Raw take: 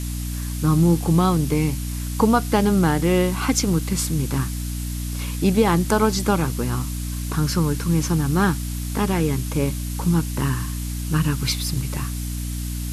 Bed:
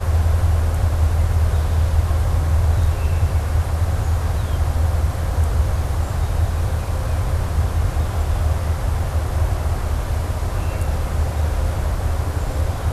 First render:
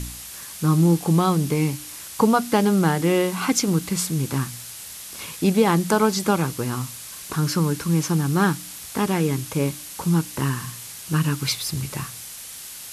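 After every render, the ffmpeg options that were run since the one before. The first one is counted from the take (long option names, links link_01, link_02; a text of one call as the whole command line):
ffmpeg -i in.wav -af "bandreject=frequency=60:width_type=h:width=4,bandreject=frequency=120:width_type=h:width=4,bandreject=frequency=180:width_type=h:width=4,bandreject=frequency=240:width_type=h:width=4,bandreject=frequency=300:width_type=h:width=4" out.wav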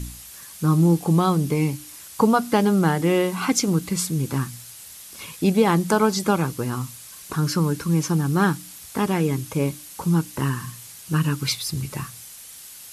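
ffmpeg -i in.wav -af "afftdn=noise_reduction=6:noise_floor=-38" out.wav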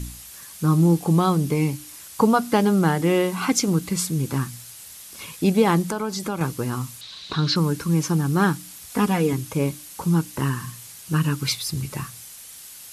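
ffmpeg -i in.wav -filter_complex "[0:a]asettb=1/sr,asplit=3[link_01][link_02][link_03];[link_01]atrim=end=5.824[link_04];[link_02]atrim=start=5.82:end=6.41,asetpts=PTS-STARTPTS,afade=type=in:duration=0.004:curve=qsin,afade=type=out:start_time=0.586:duration=0.004:curve=qsin,acompressor=threshold=-26dB:ratio=2.5:attack=3.2:release=140:knee=1:detection=peak[link_05];[link_03]atrim=start=6.406[link_06];[link_04][link_05]acrossfade=duration=0.004:curve1=hsin:curve2=qsin[link_07];[link_07][link_06]acrossfade=duration=0.004:curve1=qsin:curve2=hsin,asettb=1/sr,asplit=3[link_08][link_09][link_10];[link_08]atrim=end=7.014[link_11];[link_09]atrim=start=7.01:end=7.56,asetpts=PTS-STARTPTS,afade=type=in:duration=0.004:curve=qsin,afade=type=out:start_time=0.546:duration=0.004:curve=qsin,lowpass=frequency=3900:width_type=q:width=7.7[link_12];[link_10]atrim=start=7.556[link_13];[link_11][link_12]acrossfade=duration=0.004:curve1=hsin:curve2=qsin[link_14];[link_14][link_13]acrossfade=duration=0.004:curve1=qsin:curve2=hsin,asettb=1/sr,asplit=3[link_15][link_16][link_17];[link_15]atrim=end=8.904[link_18];[link_16]atrim=start=8.9:end=9.33,asetpts=PTS-STARTPTS,afade=type=in:duration=0.004:curve=qsin,afade=type=out:start_time=0.426:duration=0.004:curve=qsin,aecho=1:1:4.1:0.65,atrim=end_sample=18963[link_19];[link_17]atrim=start=9.326[link_20];[link_18][link_19]acrossfade=duration=0.004:curve1=hsin:curve2=qsin[link_21];[link_21][link_20]acrossfade=duration=0.004:curve1=qsin:curve2=hsin" out.wav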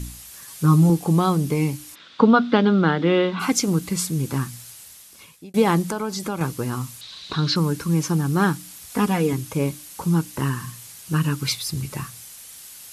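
ffmpeg -i in.wav -filter_complex "[0:a]asettb=1/sr,asplit=3[link_01][link_02][link_03];[link_01]atrim=end=0.474[link_04];[link_02]atrim=start=0.47:end=0.9,asetpts=PTS-STARTPTS,afade=type=in:duration=0.004:curve=qsin,afade=type=out:start_time=0.426:duration=0.004:curve=qsin,aecho=1:1:7.3:0.65,atrim=end_sample=18963[link_05];[link_03]atrim=start=0.896[link_06];[link_04][link_05]acrossfade=duration=0.004:curve1=hsin:curve2=qsin[link_07];[link_07][link_06]acrossfade=duration=0.004:curve1=qsin:curve2=hsin,asplit=3[link_08][link_09][link_10];[link_08]afade=type=out:start_time=1.94:duration=0.02[link_11];[link_09]highpass=frequency=110:width=0.5412,highpass=frequency=110:width=1.3066,equalizer=frequency=120:width_type=q:width=4:gain=-8,equalizer=frequency=250:width_type=q:width=4:gain=7,equalizer=frequency=500:width_type=q:width=4:gain=3,equalizer=frequency=820:width_type=q:width=4:gain=-3,equalizer=frequency=1400:width_type=q:width=4:gain=7,equalizer=frequency=3600:width_type=q:width=4:gain=10,lowpass=frequency=4000:width=0.5412,lowpass=frequency=4000:width=1.3066,afade=type=in:start_time=1.94:duration=0.02,afade=type=out:start_time=3.39:duration=0.02[link_12];[link_10]afade=type=in:start_time=3.39:duration=0.02[link_13];[link_11][link_12][link_13]amix=inputs=3:normalize=0,asplit=2[link_14][link_15];[link_14]atrim=end=5.54,asetpts=PTS-STARTPTS,afade=type=out:start_time=4.69:duration=0.85[link_16];[link_15]atrim=start=5.54,asetpts=PTS-STARTPTS,afade=type=in:duration=0.004:curve=hsin[link_17];[link_16][link_17]concat=n=2:v=0:a=1" out.wav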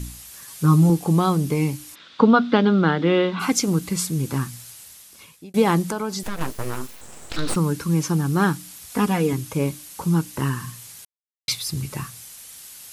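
ffmpeg -i in.wav -filter_complex "[0:a]asettb=1/sr,asplit=3[link_01][link_02][link_03];[link_01]atrim=end=6.234[link_04];[link_02]atrim=start=6.23:end=7.56,asetpts=PTS-STARTPTS,afade=type=in:duration=0.004:curve=qsin,afade=type=out:start_time=1.326:duration=0.004:curve=qsin,aeval=exprs='abs(val(0))':channel_layout=same[link_05];[link_03]atrim=start=7.556[link_06];[link_04][link_05]acrossfade=duration=0.004:curve1=hsin:curve2=qsin[link_07];[link_07][link_06]acrossfade=duration=0.004:curve1=qsin:curve2=hsin,asplit=3[link_08][link_09][link_10];[link_08]atrim=end=11.05,asetpts=PTS-STARTPTS,afade=type=out:start_time=11.046:duration=0.004:curve=hsin[link_11];[link_09]atrim=start=11.05:end=11.48,asetpts=PTS-STARTPTS,volume=0[link_12];[link_10]atrim=start=11.48,asetpts=PTS-STARTPTS,afade=type=in:duration=0.004:curve=hsin[link_13];[link_11][link_12][link_13]concat=n=3:v=0:a=1" out.wav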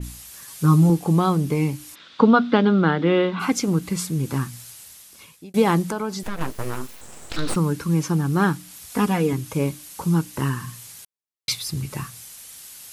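ffmpeg -i in.wav -af "adynamicequalizer=threshold=0.00891:dfrequency=3500:dqfactor=0.7:tfrequency=3500:tqfactor=0.7:attack=5:release=100:ratio=0.375:range=3:mode=cutabove:tftype=highshelf" out.wav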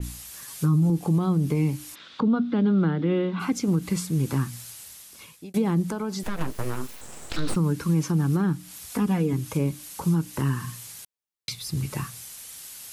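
ffmpeg -i in.wav -filter_complex "[0:a]acrossover=split=330[link_01][link_02];[link_02]acompressor=threshold=-31dB:ratio=6[link_03];[link_01][link_03]amix=inputs=2:normalize=0,alimiter=limit=-15dB:level=0:latency=1" out.wav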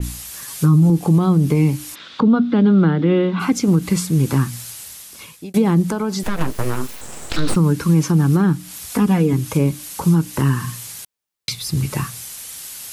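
ffmpeg -i in.wav -af "volume=8dB" out.wav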